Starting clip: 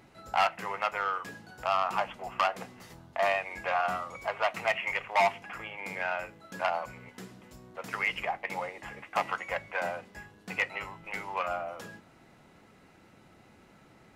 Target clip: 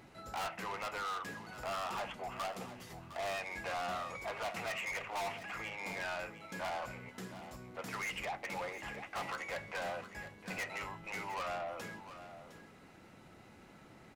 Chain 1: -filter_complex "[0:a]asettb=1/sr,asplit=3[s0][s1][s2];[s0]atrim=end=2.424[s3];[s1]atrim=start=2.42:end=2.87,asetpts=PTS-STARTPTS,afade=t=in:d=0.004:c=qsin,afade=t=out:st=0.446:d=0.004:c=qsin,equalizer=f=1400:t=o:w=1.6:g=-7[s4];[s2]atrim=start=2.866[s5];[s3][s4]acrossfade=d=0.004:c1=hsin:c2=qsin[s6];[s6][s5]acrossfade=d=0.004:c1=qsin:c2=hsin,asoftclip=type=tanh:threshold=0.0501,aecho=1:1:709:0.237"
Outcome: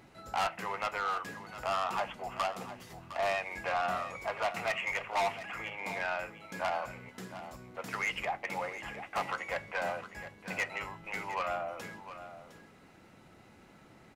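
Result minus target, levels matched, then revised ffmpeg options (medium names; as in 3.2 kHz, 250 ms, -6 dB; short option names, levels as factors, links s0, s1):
saturation: distortion -7 dB
-filter_complex "[0:a]asettb=1/sr,asplit=3[s0][s1][s2];[s0]atrim=end=2.424[s3];[s1]atrim=start=2.42:end=2.87,asetpts=PTS-STARTPTS,afade=t=in:d=0.004:c=qsin,afade=t=out:st=0.446:d=0.004:c=qsin,equalizer=f=1400:t=o:w=1.6:g=-7[s4];[s2]atrim=start=2.866[s5];[s3][s4]acrossfade=d=0.004:c1=hsin:c2=qsin[s6];[s6][s5]acrossfade=d=0.004:c1=qsin:c2=hsin,asoftclip=type=tanh:threshold=0.0158,aecho=1:1:709:0.237"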